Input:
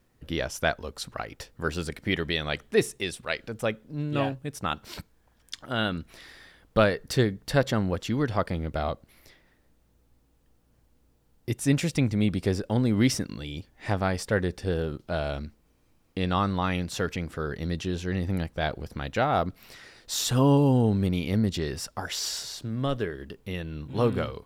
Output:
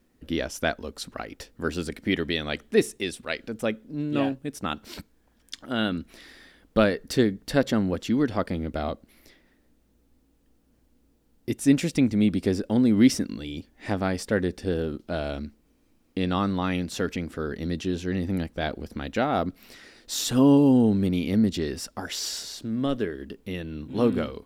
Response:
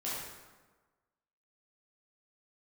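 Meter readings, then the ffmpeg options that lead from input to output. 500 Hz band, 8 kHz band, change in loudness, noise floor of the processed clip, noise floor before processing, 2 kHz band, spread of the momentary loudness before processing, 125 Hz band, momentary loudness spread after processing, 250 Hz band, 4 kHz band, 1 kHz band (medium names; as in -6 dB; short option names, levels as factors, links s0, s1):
+1.0 dB, 0.0 dB, +2.0 dB, -65 dBFS, -65 dBFS, -1.0 dB, 13 LU, -3.0 dB, 14 LU, +5.0 dB, 0.0 dB, -1.5 dB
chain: -af "equalizer=f=125:t=o:w=1:g=-7,equalizer=f=250:t=o:w=1:g=8,equalizer=f=1000:t=o:w=1:g=-3"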